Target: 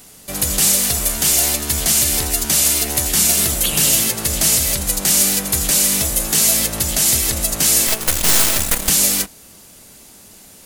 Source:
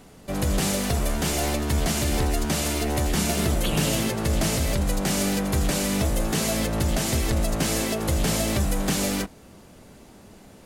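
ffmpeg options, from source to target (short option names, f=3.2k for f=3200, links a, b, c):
-filter_complex "[0:a]crystalizer=i=7:c=0,asettb=1/sr,asplit=3[a][b][c];[a]atrim=end=7.874[d];[b]atrim=start=7.87:end=8.89,asetpts=PTS-STARTPTS,afade=t=in:d=0.004:c=qsin,afade=t=out:st=1.016:d=0.004:c=qsin,aeval=exprs='1.19*(cos(1*acos(clip(val(0)/1.19,-1,1)))-cos(1*PI/2))+0.119*(cos(3*acos(clip(val(0)/1.19,-1,1)))-cos(3*PI/2))+0.299*(cos(6*acos(clip(val(0)/1.19,-1,1)))-cos(6*PI/2))':c=same[e];[c]atrim=start=8.886[f];[d][e]acrossfade=d=0.004:c1=hsin:c2=qsin[g];[g][f]acrossfade=d=0.004:c1=qsin:c2=hsin,volume=-2.5dB"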